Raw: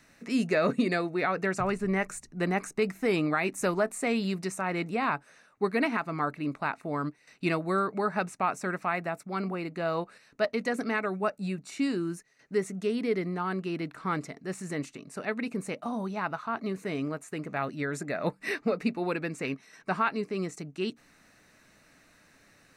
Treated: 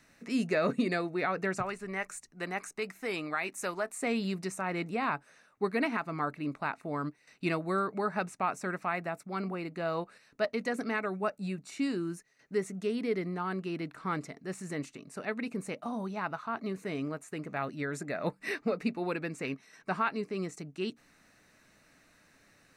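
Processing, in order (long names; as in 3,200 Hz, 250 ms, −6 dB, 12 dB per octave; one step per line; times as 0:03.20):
0:01.62–0:04.02: low-shelf EQ 440 Hz −12 dB
level −3 dB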